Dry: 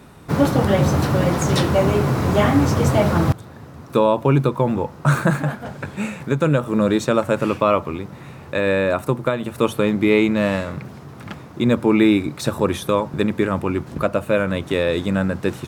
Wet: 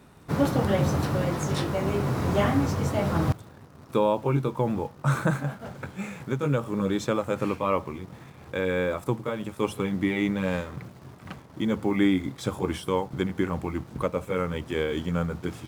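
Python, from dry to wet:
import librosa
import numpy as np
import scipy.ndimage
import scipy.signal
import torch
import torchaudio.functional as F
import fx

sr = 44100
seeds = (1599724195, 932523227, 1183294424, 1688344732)

p1 = fx.pitch_glide(x, sr, semitones=-2.0, runs='starting unshifted')
p2 = fx.quant_dither(p1, sr, seeds[0], bits=6, dither='none')
p3 = p1 + (p2 * 10.0 ** (-12.0 / 20.0))
y = p3 * 10.0 ** (-8.5 / 20.0)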